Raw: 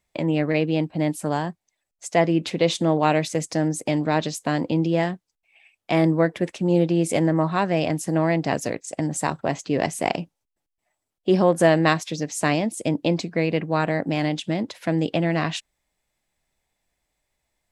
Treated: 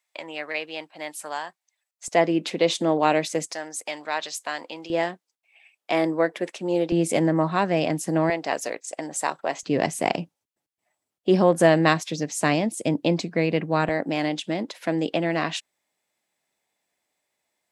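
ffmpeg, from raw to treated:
ffmpeg -i in.wav -af "asetnsamples=nb_out_samples=441:pad=0,asendcmd='2.08 highpass f 250;3.52 highpass f 900;4.9 highpass f 370;6.92 highpass f 160;8.3 highpass f 480;9.63 highpass f 120;13.89 highpass f 240',highpass=930" out.wav

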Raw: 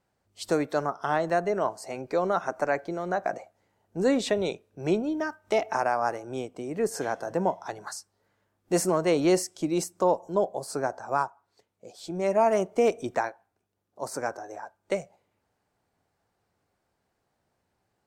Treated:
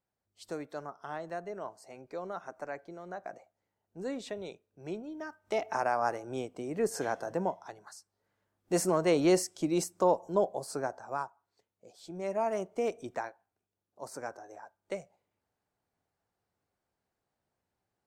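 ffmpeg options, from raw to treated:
ffmpeg -i in.wav -af "volume=8.5dB,afade=type=in:start_time=5.11:duration=0.89:silence=0.298538,afade=type=out:start_time=7.18:duration=0.67:silence=0.281838,afade=type=in:start_time=7.85:duration=1.19:silence=0.266073,afade=type=out:start_time=10.44:duration=0.73:silence=0.473151" out.wav

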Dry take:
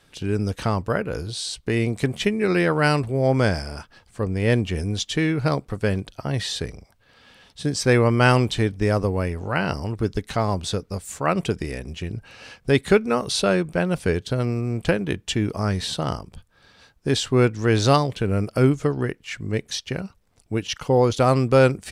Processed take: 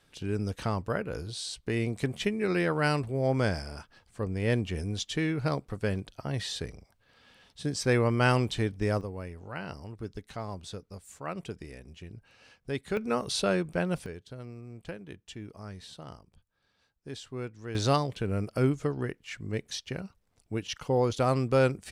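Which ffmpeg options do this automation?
ffmpeg -i in.wav -af "asetnsamples=nb_out_samples=441:pad=0,asendcmd='9.01 volume volume -15dB;12.97 volume volume -7dB;14.06 volume volume -19.5dB;17.75 volume volume -8dB',volume=-7.5dB" out.wav

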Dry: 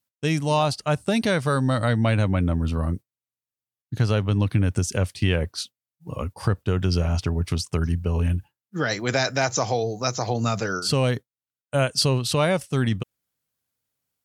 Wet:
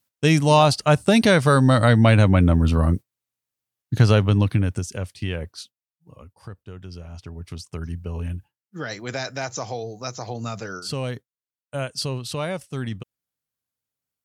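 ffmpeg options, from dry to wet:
ffmpeg -i in.wav -af "volume=15.5dB,afade=type=out:start_time=4.09:duration=0.79:silence=0.251189,afade=type=out:start_time=5.5:duration=0.69:silence=0.316228,afade=type=in:start_time=7.09:duration=0.9:silence=0.334965" out.wav

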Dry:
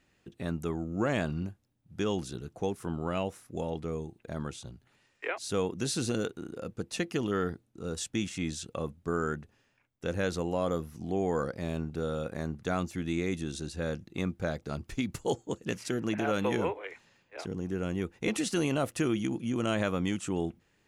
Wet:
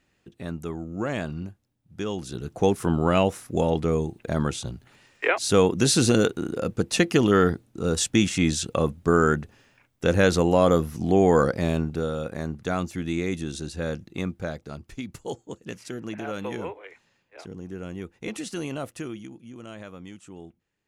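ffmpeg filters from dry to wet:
ffmpeg -i in.wav -af "volume=11.5dB,afade=type=in:start_time=2.2:duration=0.49:silence=0.281838,afade=type=out:start_time=11.49:duration=0.64:silence=0.421697,afade=type=out:start_time=14.06:duration=0.76:silence=0.446684,afade=type=out:start_time=18.82:duration=0.53:silence=0.375837" out.wav

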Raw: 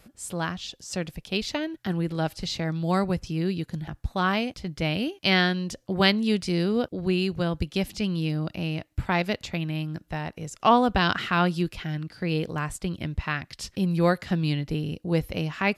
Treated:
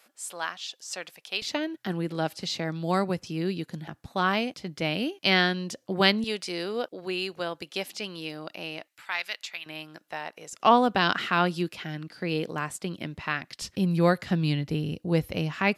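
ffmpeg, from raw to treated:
ffmpeg -i in.wav -af "asetnsamples=nb_out_samples=441:pad=0,asendcmd='1.42 highpass f 200;6.24 highpass f 470;8.88 highpass f 1500;9.66 highpass f 530;10.53 highpass f 210;13.62 highpass f 83',highpass=730" out.wav

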